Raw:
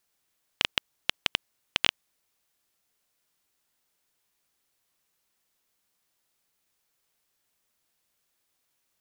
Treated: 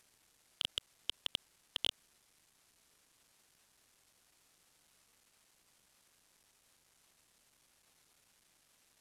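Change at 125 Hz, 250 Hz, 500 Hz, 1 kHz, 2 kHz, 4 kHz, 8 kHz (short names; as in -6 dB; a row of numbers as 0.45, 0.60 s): -12.0, -13.5, -13.0, -17.0, -18.5, -8.5, -9.0 dB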